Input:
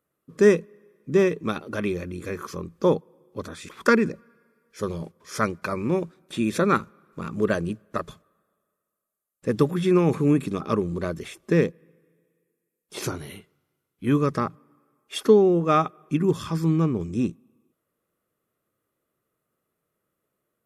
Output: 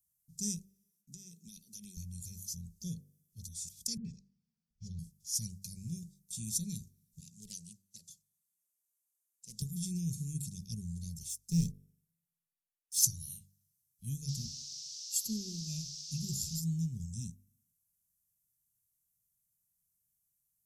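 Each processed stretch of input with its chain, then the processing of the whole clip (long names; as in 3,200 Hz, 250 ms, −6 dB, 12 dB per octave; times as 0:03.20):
0:00.58–0:01.97: high-pass filter 200 Hz 24 dB per octave + downward compressor 12 to 1, threshold −26 dBFS + noise gate with hold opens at −50 dBFS, closes at −56 dBFS
0:03.97–0:04.99: high-frequency loss of the air 210 metres + all-pass dispersion highs, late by 75 ms, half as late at 450 Hz
0:07.20–0:09.62: meter weighting curve A + highs frequency-modulated by the lows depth 0.21 ms
0:11.29–0:13.05: leveller curve on the samples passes 1 + multiband upward and downward expander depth 40%
0:14.27–0:16.59: EQ curve with evenly spaced ripples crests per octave 1.4, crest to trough 11 dB + noise in a band 2,100–5,600 Hz −42 dBFS + repeating echo 162 ms, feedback 42%, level −24 dB
whole clip: elliptic band-stop filter 200–5,900 Hz, stop band 80 dB; guitar amp tone stack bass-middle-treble 10-0-10; hum removal 48.5 Hz, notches 34; level +6.5 dB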